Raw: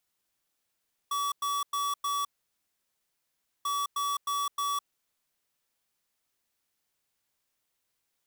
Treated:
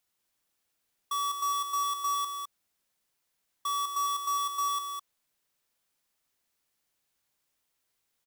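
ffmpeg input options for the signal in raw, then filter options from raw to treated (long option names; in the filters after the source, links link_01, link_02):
-f lavfi -i "aevalsrc='0.0316*(2*lt(mod(1140*t,1),0.5)-1)*clip(min(mod(mod(t,2.54),0.31),0.21-mod(mod(t,2.54),0.31))/0.005,0,1)*lt(mod(t,2.54),1.24)':duration=5.08:sample_rate=44100"
-af "aecho=1:1:206:0.473"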